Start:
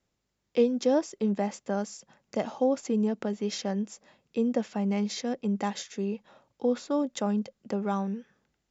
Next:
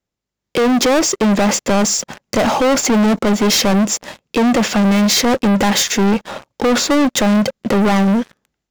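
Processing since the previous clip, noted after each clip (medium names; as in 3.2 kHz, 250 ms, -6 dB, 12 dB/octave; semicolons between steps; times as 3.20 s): peak limiter -21.5 dBFS, peak gain reduction 9 dB; waveshaping leveller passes 5; level rider gain up to 5 dB; trim +6 dB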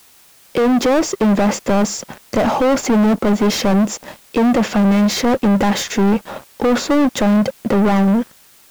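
treble shelf 2.2 kHz -9 dB; word length cut 8-bit, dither triangular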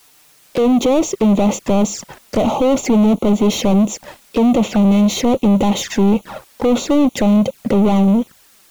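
touch-sensitive flanger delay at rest 7.5 ms, full sweep at -15.5 dBFS; trim +1.5 dB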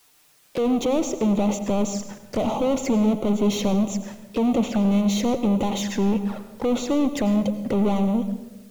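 reverberation RT60 1.2 s, pre-delay 85 ms, DRR 10.5 dB; trim -8 dB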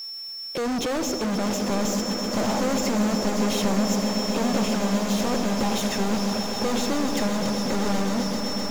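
whistle 5.4 kHz -36 dBFS; hard clipper -28 dBFS, distortion -7 dB; echo with a slow build-up 129 ms, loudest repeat 8, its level -12.5 dB; trim +3.5 dB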